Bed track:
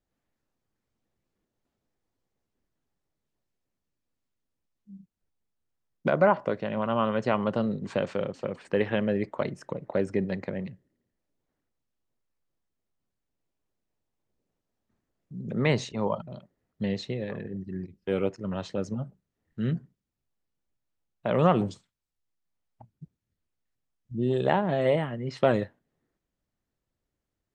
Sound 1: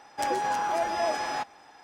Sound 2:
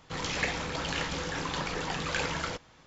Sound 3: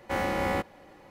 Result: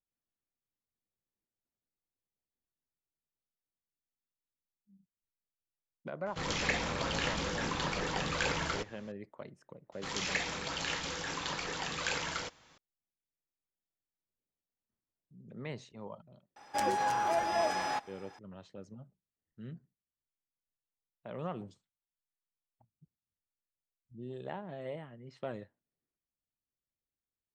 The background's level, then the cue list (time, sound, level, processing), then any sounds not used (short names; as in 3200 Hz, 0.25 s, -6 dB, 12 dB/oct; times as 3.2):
bed track -17.5 dB
6.26 add 2 -1.5 dB
9.92 add 2 -4.5 dB + tilt +1.5 dB/oct
16.56 add 1 -3 dB
not used: 3